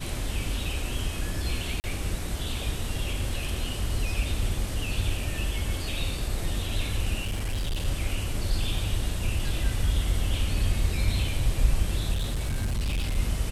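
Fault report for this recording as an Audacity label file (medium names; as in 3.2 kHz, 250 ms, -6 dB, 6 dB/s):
1.800000	1.840000	dropout 39 ms
7.250000	7.860000	clipped -25 dBFS
12.120000	13.180000	clipped -24 dBFS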